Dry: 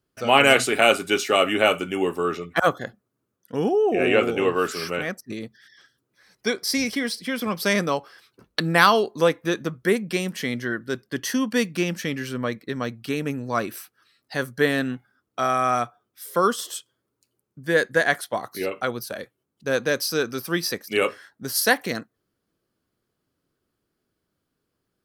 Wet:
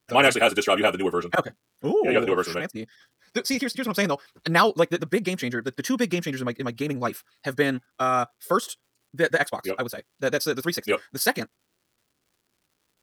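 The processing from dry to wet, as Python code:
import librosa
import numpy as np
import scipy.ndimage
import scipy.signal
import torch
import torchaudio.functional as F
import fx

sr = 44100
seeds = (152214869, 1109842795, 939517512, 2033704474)

y = fx.stretch_vocoder(x, sr, factor=0.52)
y = fx.dmg_crackle(y, sr, seeds[0], per_s=270.0, level_db=-56.0)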